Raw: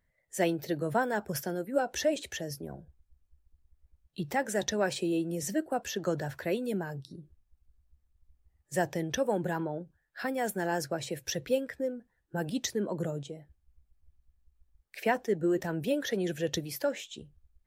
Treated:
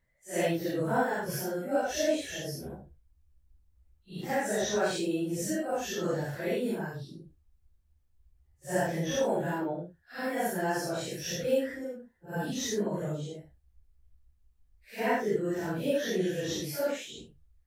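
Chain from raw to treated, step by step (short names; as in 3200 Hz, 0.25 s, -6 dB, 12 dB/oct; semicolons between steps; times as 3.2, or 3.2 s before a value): phase scrambler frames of 0.2 s; gain +1 dB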